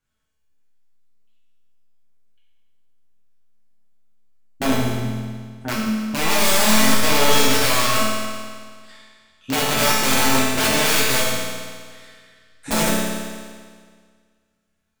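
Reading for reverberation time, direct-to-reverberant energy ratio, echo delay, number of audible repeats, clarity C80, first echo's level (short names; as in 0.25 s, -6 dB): 1.8 s, -7.5 dB, none, none, 0.5 dB, none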